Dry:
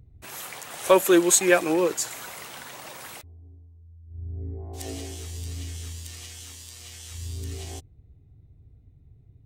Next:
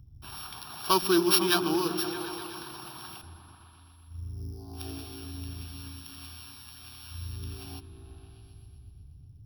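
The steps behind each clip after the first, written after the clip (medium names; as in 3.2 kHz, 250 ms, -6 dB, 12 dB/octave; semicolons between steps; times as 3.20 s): sorted samples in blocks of 8 samples; static phaser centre 2 kHz, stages 6; delay with an opening low-pass 124 ms, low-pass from 200 Hz, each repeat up 1 oct, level -3 dB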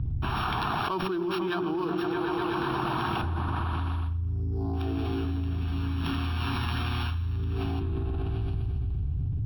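distance through air 490 m; level flattener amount 100%; trim -7.5 dB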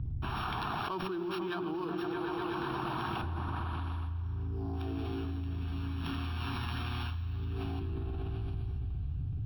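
thinning echo 418 ms, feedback 69%, high-pass 210 Hz, level -20 dB; trim -6.5 dB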